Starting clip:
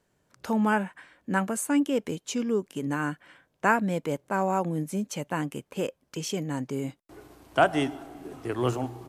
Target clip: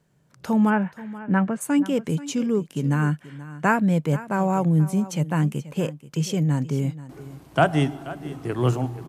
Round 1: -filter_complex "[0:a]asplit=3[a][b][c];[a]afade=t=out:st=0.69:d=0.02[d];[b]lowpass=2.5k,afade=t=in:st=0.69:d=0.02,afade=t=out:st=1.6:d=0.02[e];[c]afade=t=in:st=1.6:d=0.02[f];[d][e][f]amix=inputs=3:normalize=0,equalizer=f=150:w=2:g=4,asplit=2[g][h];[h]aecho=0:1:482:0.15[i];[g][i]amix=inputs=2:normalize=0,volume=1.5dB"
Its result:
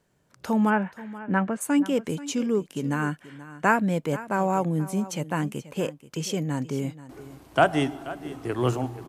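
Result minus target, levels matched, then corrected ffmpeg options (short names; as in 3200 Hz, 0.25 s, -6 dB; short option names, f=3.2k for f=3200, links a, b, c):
125 Hz band -4.5 dB
-filter_complex "[0:a]asplit=3[a][b][c];[a]afade=t=out:st=0.69:d=0.02[d];[b]lowpass=2.5k,afade=t=in:st=0.69:d=0.02,afade=t=out:st=1.6:d=0.02[e];[c]afade=t=in:st=1.6:d=0.02[f];[d][e][f]amix=inputs=3:normalize=0,equalizer=f=150:w=2:g=13.5,asplit=2[g][h];[h]aecho=0:1:482:0.15[i];[g][i]amix=inputs=2:normalize=0,volume=1.5dB"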